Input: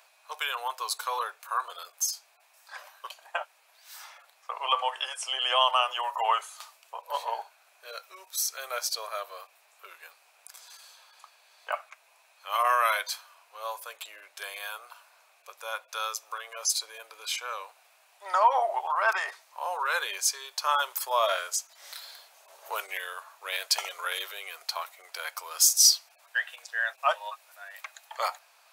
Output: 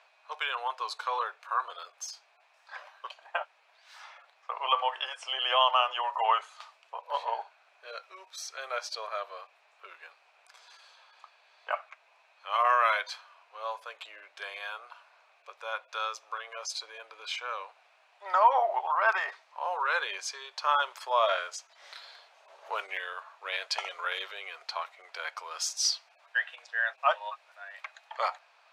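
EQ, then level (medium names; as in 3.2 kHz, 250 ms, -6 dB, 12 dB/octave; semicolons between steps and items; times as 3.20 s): low-pass 3.5 kHz 12 dB/octave; 0.0 dB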